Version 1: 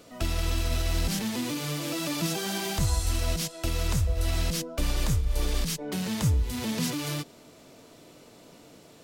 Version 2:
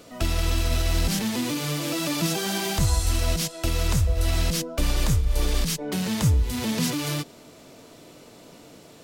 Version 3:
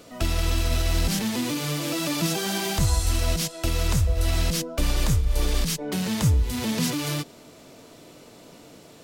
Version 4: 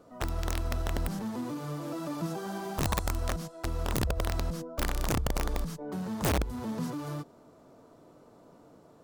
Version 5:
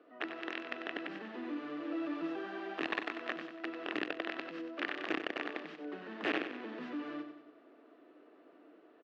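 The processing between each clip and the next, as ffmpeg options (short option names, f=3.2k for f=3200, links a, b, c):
-af "acontrast=26,volume=-1dB"
-af anull
-af "highshelf=f=1.7k:t=q:w=1.5:g=-11.5,aeval=exprs='(mod(5.31*val(0)+1,2)-1)/5.31':c=same,volume=-8dB"
-af "highpass=f=310:w=0.5412,highpass=f=310:w=1.3066,equalizer=f=310:t=q:w=4:g=7,equalizer=f=540:t=q:w=4:g=-5,equalizer=f=930:t=q:w=4:g=-9,equalizer=f=1.8k:t=q:w=4:g=8,equalizer=f=2.7k:t=q:w=4:g=7,lowpass=f=3.4k:w=0.5412,lowpass=f=3.4k:w=1.3066,aecho=1:1:94|188|282|376|470|564:0.355|0.177|0.0887|0.0444|0.0222|0.0111,volume=-3.5dB"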